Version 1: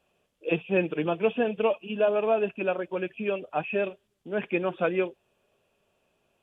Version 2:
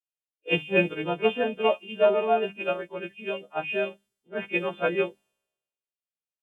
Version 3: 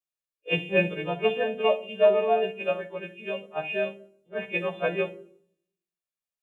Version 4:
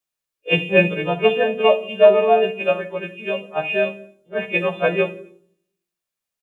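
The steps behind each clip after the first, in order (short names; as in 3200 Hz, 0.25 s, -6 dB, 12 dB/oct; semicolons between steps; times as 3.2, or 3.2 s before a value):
frequency quantiser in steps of 2 st; notches 50/100/150/200/250/300 Hz; three-band expander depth 100%
reverb RT60 0.60 s, pre-delay 6 ms, DRR 8.5 dB; gain -2.5 dB
feedback echo 86 ms, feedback 42%, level -20.5 dB; gain +8 dB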